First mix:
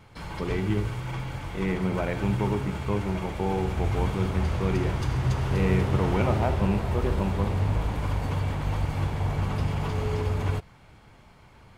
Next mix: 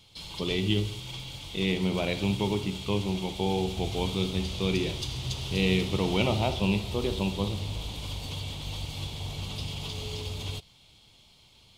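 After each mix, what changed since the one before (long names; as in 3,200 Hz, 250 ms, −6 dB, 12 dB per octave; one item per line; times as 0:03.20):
background −9.5 dB
master: add high shelf with overshoot 2,400 Hz +13 dB, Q 3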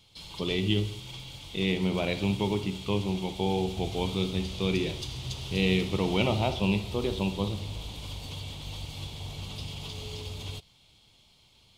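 background −3.0 dB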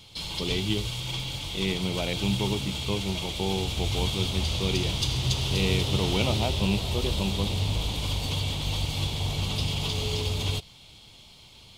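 background +10.0 dB
reverb: off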